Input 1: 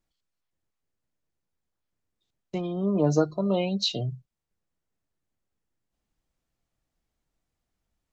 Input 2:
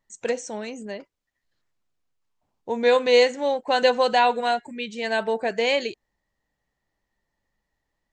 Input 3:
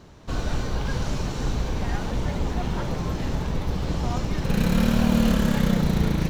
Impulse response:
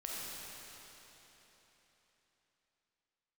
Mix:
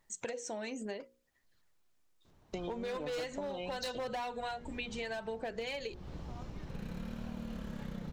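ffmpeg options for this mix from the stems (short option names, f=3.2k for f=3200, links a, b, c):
-filter_complex "[0:a]highpass=f=360:p=1,highshelf=f=4.3k:g=6,volume=1.5dB[a];[1:a]bandreject=f=60:t=h:w=6,bandreject=f=120:t=h:w=6,bandreject=f=180:t=h:w=6,bandreject=f=240:t=h:w=6,bandreject=f=300:t=h:w=6,bandreject=f=360:t=h:w=6,bandreject=f=420:t=h:w=6,bandreject=f=480:t=h:w=6,bandreject=f=540:t=h:w=6,aphaser=in_gain=1:out_gain=1:delay=3.4:decay=0.37:speed=0.73:type=sinusoidal,volume=0.5dB,asplit=2[b][c];[2:a]highshelf=f=4.8k:g=-7,adelay=2250,volume=-18dB[d];[c]apad=whole_len=376893[e];[d][e]sidechaincompress=threshold=-20dB:ratio=8:attack=16:release=604[f];[a][b]amix=inputs=2:normalize=0,asoftclip=type=hard:threshold=-15.5dB,acompressor=threshold=-28dB:ratio=3,volume=0dB[g];[f][g]amix=inputs=2:normalize=0,acompressor=threshold=-37dB:ratio=6"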